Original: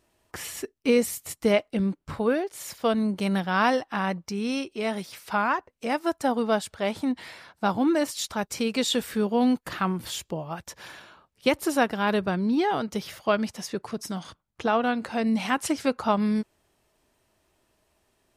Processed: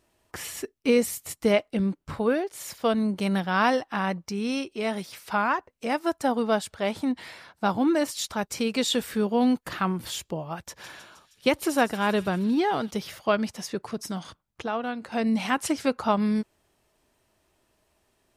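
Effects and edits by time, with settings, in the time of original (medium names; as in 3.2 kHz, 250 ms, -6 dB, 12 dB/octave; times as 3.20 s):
10.62–12.91 s: feedback echo behind a high-pass 157 ms, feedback 67%, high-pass 3.6 kHz, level -11 dB
14.62–15.12 s: gain -6 dB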